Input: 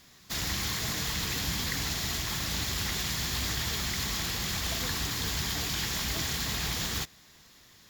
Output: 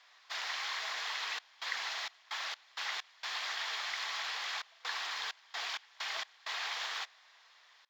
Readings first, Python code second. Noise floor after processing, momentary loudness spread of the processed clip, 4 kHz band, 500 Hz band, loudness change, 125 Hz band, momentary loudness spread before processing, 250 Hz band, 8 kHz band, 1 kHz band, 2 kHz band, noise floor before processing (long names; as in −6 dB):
−63 dBFS, 4 LU, −6.5 dB, −11.0 dB, −7.5 dB, below −40 dB, 1 LU, below −30 dB, −15.5 dB, −2.0 dB, −2.5 dB, −57 dBFS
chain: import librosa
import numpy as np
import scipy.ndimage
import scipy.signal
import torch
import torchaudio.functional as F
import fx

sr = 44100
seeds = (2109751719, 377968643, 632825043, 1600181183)

y = scipy.signal.sosfilt(scipy.signal.butter(4, 720.0, 'highpass', fs=sr, output='sos'), x)
y = fx.step_gate(y, sr, bpm=65, pattern='xxxxxx.xx.x.x.', floor_db=-24.0, edge_ms=4.5)
y = fx.air_absorb(y, sr, metres=200.0)
y = F.gain(torch.from_numpy(y), 1.0).numpy()